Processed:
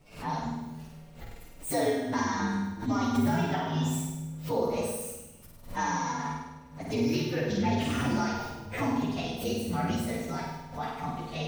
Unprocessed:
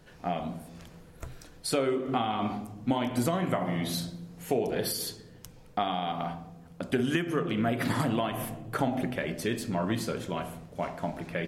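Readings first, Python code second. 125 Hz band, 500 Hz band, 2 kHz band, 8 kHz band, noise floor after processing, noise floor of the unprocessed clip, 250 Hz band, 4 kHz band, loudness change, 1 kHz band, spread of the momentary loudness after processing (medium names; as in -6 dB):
+1.5 dB, -1.5 dB, 0.0 dB, +1.0 dB, -50 dBFS, -52 dBFS, +1.0 dB, -2.5 dB, 0.0 dB, +0.5 dB, 13 LU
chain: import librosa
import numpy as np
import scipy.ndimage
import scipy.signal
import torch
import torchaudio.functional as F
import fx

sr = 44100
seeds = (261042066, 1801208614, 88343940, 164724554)

y = fx.partial_stretch(x, sr, pct=123)
y = fx.room_flutter(y, sr, wall_m=8.7, rt60_s=0.94)
y = fx.pre_swell(y, sr, db_per_s=130.0)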